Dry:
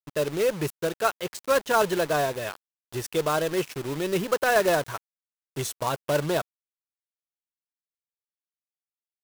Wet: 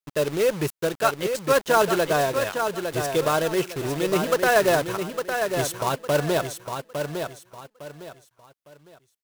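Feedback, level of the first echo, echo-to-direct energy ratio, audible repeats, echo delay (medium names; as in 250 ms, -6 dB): 29%, -6.5 dB, -6.0 dB, 3, 857 ms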